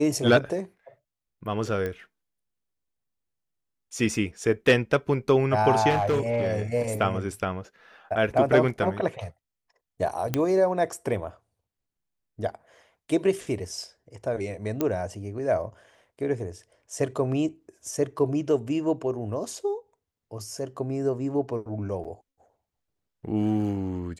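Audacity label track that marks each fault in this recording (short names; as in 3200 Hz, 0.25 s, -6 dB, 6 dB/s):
1.860000	1.860000	pop -19 dBFS
5.890000	6.620000	clipped -19.5 dBFS
10.340000	10.340000	pop -10 dBFS
14.810000	14.810000	pop -12 dBFS
22.040000	22.050000	gap 6.9 ms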